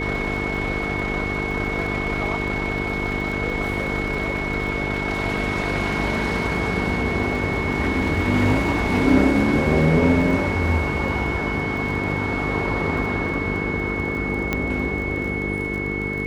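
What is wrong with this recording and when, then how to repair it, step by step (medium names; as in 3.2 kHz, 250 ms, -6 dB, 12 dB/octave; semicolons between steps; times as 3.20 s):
buzz 50 Hz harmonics 9 -28 dBFS
crackle 21 per s -30 dBFS
whine 2.2 kHz -27 dBFS
14.53 s: pop -8 dBFS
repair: de-click; de-hum 50 Hz, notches 9; band-stop 2.2 kHz, Q 30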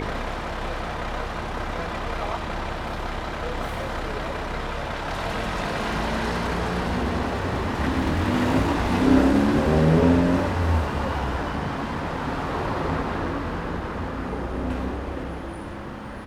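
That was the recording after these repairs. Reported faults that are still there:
nothing left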